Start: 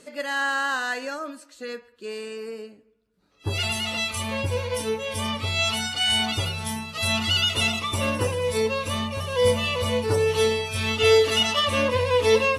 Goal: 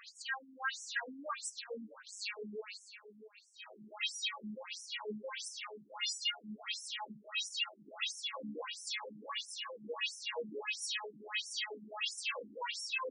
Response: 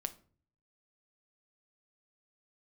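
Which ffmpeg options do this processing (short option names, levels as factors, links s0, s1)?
-filter_complex "[0:a]equalizer=f=390:w=0.7:g=-14.5,areverse,acompressor=threshold=0.0141:ratio=5,areverse,asoftclip=type=tanh:threshold=0.0178,asplit=2[s0][s1];[s1]aecho=0:1:588|1176|1764:0.224|0.0627|0.0176[s2];[s0][s2]amix=inputs=2:normalize=0,asetrate=42336,aresample=44100,afftfilt=real='re*between(b*sr/1024,240*pow(7600/240,0.5+0.5*sin(2*PI*1.5*pts/sr))/1.41,240*pow(7600/240,0.5+0.5*sin(2*PI*1.5*pts/sr))*1.41)':imag='im*between(b*sr/1024,240*pow(7600/240,0.5+0.5*sin(2*PI*1.5*pts/sr))/1.41,240*pow(7600/240,0.5+0.5*sin(2*PI*1.5*pts/sr))*1.41)':win_size=1024:overlap=0.75,volume=2.82"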